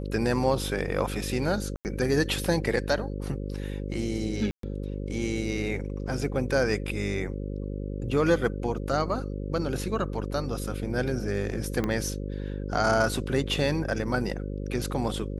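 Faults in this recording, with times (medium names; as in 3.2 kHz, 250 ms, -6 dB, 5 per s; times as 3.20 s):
buzz 50 Hz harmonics 11 -33 dBFS
1.76–1.85 s: dropout 89 ms
4.51–4.63 s: dropout 123 ms
11.84 s: pop -15 dBFS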